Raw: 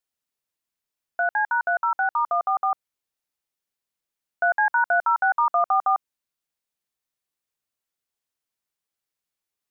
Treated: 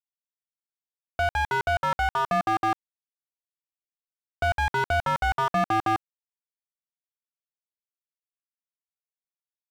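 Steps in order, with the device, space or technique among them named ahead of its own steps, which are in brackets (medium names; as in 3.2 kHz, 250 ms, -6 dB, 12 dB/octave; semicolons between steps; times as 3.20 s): early transistor amplifier (crossover distortion -49.5 dBFS; slew-rate limiter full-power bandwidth 45 Hz); trim +5 dB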